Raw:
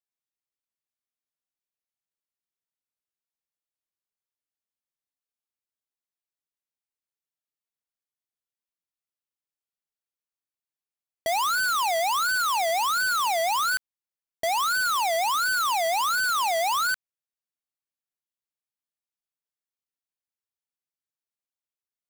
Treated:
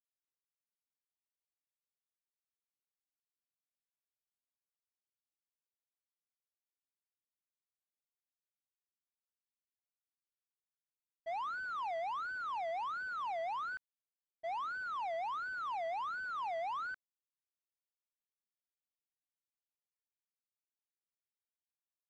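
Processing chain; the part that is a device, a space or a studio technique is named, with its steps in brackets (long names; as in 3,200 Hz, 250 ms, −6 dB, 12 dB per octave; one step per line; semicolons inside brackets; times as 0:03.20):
hearing-loss simulation (low-pass filter 1,800 Hz 12 dB per octave; downward expander −17 dBFS)
level +1 dB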